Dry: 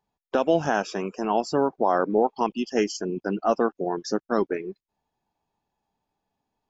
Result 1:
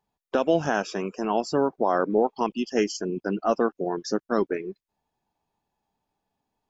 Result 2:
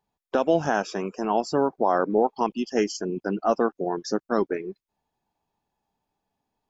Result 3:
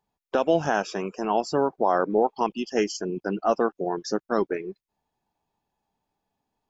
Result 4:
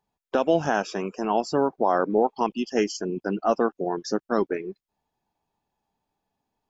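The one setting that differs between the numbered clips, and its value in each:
dynamic bell, frequency: 820 Hz, 2.8 kHz, 250 Hz, 9.5 kHz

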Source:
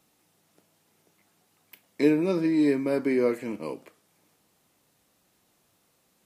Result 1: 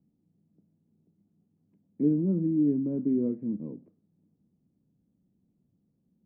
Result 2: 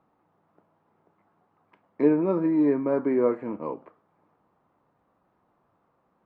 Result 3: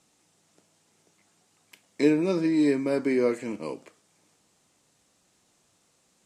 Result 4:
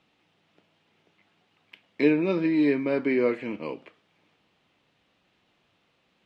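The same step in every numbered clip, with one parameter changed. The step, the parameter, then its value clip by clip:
resonant low-pass, frequency: 210 Hz, 1.1 kHz, 7.7 kHz, 3 kHz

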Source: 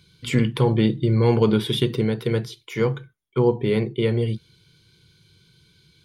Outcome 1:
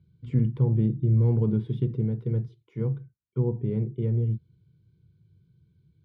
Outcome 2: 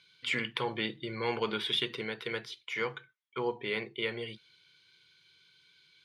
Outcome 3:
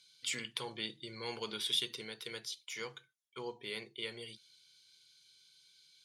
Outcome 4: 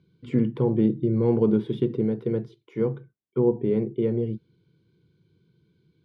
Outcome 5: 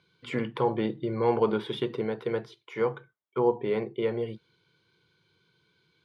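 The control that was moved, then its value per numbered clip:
band-pass filter, frequency: 100 Hz, 2.2 kHz, 6.5 kHz, 280 Hz, 840 Hz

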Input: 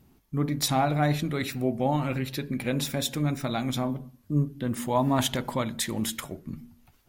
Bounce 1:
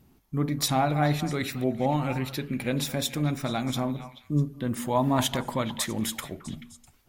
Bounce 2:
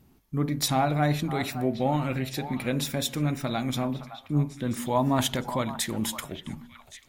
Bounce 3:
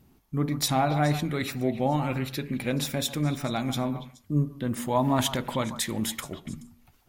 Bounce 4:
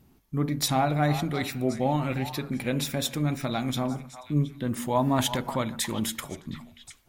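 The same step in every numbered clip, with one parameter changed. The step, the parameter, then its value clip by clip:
repeats whose band climbs or falls, time: 217 ms, 564 ms, 142 ms, 360 ms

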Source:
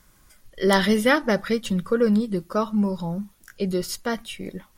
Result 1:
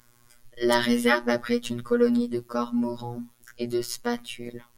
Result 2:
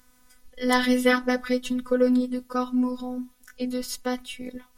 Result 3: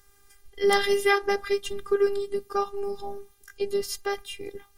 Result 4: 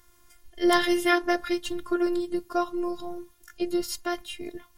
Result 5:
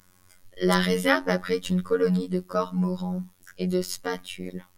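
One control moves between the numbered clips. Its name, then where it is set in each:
robot voice, frequency: 120 Hz, 250 Hz, 400 Hz, 350 Hz, 91 Hz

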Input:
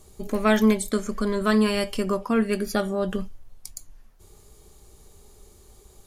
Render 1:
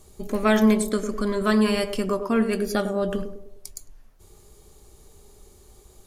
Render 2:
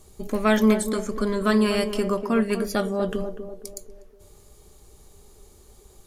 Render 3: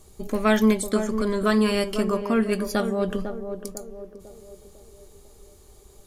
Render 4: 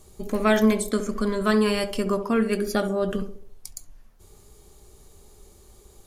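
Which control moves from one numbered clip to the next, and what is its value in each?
band-passed feedback delay, time: 102 ms, 245 ms, 500 ms, 68 ms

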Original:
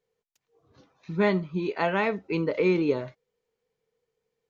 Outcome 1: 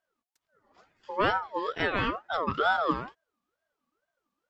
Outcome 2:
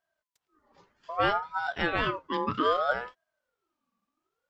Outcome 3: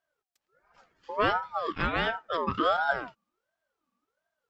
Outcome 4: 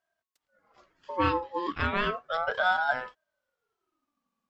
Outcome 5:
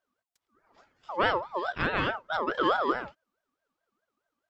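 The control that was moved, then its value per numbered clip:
ring modulator with a swept carrier, at: 2.2 Hz, 0.63 Hz, 1.4 Hz, 0.34 Hz, 4.7 Hz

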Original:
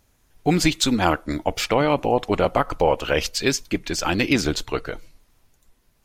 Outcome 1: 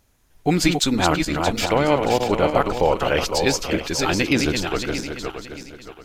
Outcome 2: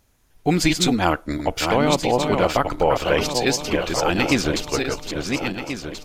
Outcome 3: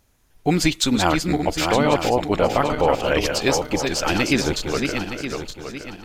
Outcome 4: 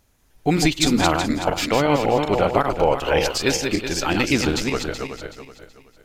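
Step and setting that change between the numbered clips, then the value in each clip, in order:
backward echo that repeats, time: 313 ms, 691 ms, 459 ms, 188 ms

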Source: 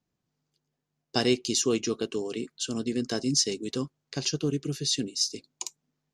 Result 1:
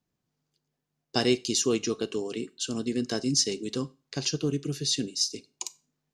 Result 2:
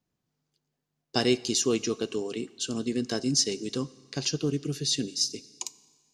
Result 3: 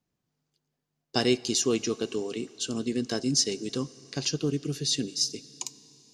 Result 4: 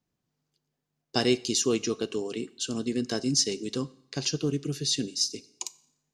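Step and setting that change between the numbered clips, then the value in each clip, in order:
Schroeder reverb, RT60: 0.32 s, 1.6 s, 4.1 s, 0.7 s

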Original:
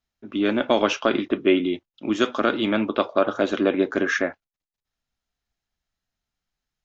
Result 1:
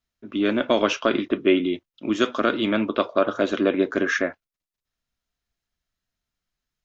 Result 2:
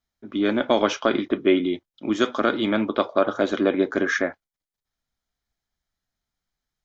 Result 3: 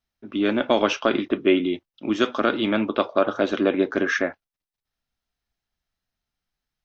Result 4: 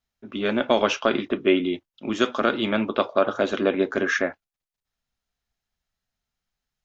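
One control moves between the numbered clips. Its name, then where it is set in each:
band-stop, frequency: 810 Hz, 2.7 kHz, 6.9 kHz, 310 Hz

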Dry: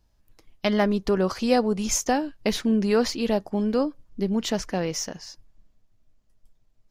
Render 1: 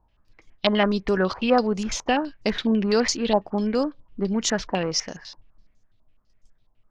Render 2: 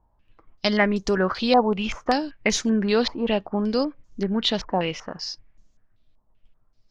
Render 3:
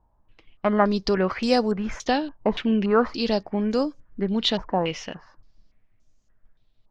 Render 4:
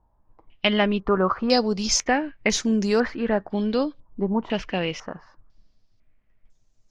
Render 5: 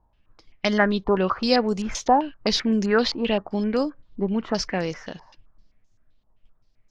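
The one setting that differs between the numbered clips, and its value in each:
step-sequenced low-pass, rate: 12 Hz, 5.2 Hz, 3.5 Hz, 2 Hz, 7.7 Hz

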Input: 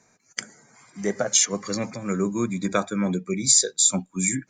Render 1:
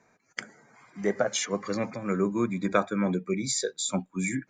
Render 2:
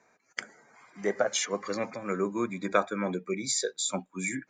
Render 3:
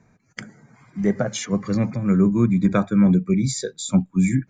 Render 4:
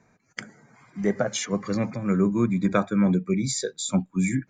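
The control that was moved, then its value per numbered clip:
tone controls, bass: -4 dB, -14 dB, +14 dB, +6 dB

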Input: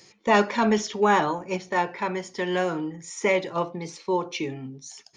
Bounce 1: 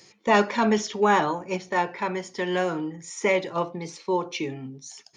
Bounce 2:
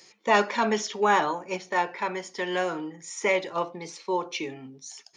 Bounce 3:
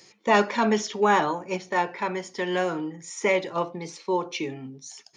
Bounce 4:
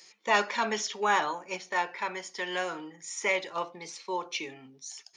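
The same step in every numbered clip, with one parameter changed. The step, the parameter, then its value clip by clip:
high-pass, cutoff frequency: 48 Hz, 420 Hz, 150 Hz, 1.3 kHz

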